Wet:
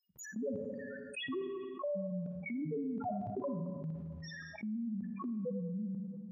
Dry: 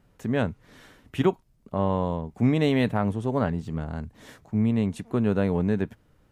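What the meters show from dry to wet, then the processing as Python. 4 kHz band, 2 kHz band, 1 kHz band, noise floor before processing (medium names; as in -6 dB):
-10.5 dB, -10.5 dB, -13.0 dB, -63 dBFS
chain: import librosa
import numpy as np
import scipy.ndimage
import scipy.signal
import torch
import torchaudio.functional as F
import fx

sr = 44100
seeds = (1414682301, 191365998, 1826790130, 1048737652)

y = fx.bin_expand(x, sr, power=1.5)
y = scipy.signal.sosfilt(scipy.signal.butter(2, 40.0, 'highpass', fs=sr, output='sos'), y)
y = fx.low_shelf(y, sr, hz=64.0, db=-6.5)
y = fx.dispersion(y, sr, late='lows', ms=103.0, hz=1600.0)
y = fx.spec_topn(y, sr, count=1)
y = fx.level_steps(y, sr, step_db=21)
y = fx.weighting(y, sr, curve='A')
y = fx.echo_thinned(y, sr, ms=221, feedback_pct=25, hz=170.0, wet_db=-21.5)
y = fx.rev_schroeder(y, sr, rt60_s=0.91, comb_ms=38, drr_db=8.0)
y = fx.env_flatten(y, sr, amount_pct=70)
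y = F.gain(torch.from_numpy(y), 8.0).numpy()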